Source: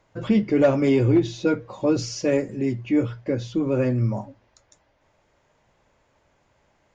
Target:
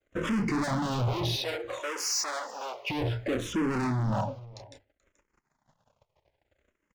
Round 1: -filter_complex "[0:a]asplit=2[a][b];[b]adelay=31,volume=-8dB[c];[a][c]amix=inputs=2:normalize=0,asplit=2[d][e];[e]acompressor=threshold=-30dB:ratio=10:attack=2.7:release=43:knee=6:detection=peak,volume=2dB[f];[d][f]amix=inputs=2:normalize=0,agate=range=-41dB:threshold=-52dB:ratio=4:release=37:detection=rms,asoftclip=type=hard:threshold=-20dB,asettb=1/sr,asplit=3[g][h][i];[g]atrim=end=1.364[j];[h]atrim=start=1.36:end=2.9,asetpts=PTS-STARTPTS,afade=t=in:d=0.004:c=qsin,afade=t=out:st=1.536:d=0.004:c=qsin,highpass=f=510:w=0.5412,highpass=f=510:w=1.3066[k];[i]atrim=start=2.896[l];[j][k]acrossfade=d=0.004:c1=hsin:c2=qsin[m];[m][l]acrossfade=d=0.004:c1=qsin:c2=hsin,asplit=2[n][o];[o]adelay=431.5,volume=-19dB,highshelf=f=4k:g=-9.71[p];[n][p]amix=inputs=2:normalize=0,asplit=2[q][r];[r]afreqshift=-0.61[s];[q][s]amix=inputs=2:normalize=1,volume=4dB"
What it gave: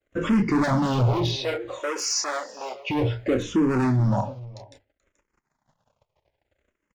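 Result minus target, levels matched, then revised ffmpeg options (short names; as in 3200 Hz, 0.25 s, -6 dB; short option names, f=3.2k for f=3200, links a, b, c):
hard clip: distortion -4 dB
-filter_complex "[0:a]asplit=2[a][b];[b]adelay=31,volume=-8dB[c];[a][c]amix=inputs=2:normalize=0,asplit=2[d][e];[e]acompressor=threshold=-30dB:ratio=10:attack=2.7:release=43:knee=6:detection=peak,volume=2dB[f];[d][f]amix=inputs=2:normalize=0,agate=range=-41dB:threshold=-52dB:ratio=4:release=37:detection=rms,asoftclip=type=hard:threshold=-28.5dB,asettb=1/sr,asplit=3[g][h][i];[g]atrim=end=1.364[j];[h]atrim=start=1.36:end=2.9,asetpts=PTS-STARTPTS,afade=t=in:d=0.004:c=qsin,afade=t=out:st=1.536:d=0.004:c=qsin,highpass=f=510:w=0.5412,highpass=f=510:w=1.3066[k];[i]atrim=start=2.896[l];[j][k]acrossfade=d=0.004:c1=hsin:c2=qsin[m];[m][l]acrossfade=d=0.004:c1=qsin:c2=hsin,asplit=2[n][o];[o]adelay=431.5,volume=-19dB,highshelf=f=4k:g=-9.71[p];[n][p]amix=inputs=2:normalize=0,asplit=2[q][r];[r]afreqshift=-0.61[s];[q][s]amix=inputs=2:normalize=1,volume=4dB"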